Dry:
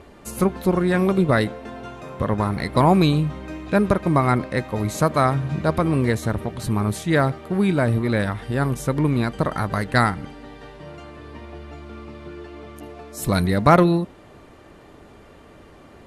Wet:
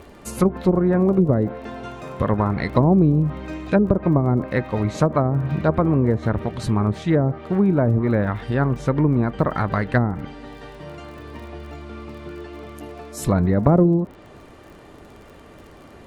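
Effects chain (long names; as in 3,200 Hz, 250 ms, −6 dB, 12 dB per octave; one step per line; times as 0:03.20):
treble cut that deepens with the level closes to 470 Hz, closed at −13 dBFS
surface crackle 31 per second −41 dBFS
level +2 dB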